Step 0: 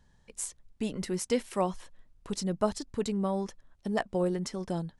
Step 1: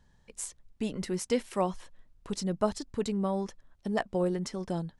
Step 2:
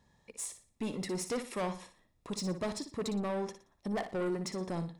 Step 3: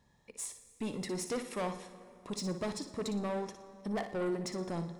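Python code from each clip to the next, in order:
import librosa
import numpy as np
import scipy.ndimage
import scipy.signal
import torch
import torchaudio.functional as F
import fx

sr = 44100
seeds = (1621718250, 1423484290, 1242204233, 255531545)

y1 = fx.high_shelf(x, sr, hz=10000.0, db=-5.0)
y2 = fx.notch_comb(y1, sr, f0_hz=1500.0)
y2 = 10.0 ** (-31.5 / 20.0) * np.tanh(y2 / 10.0 ** (-31.5 / 20.0))
y2 = fx.room_flutter(y2, sr, wall_m=10.1, rt60_s=0.36)
y2 = F.gain(torch.from_numpy(y2), 1.5).numpy()
y3 = fx.rev_plate(y2, sr, seeds[0], rt60_s=2.8, hf_ratio=0.7, predelay_ms=0, drr_db=12.5)
y3 = F.gain(torch.from_numpy(y3), -1.0).numpy()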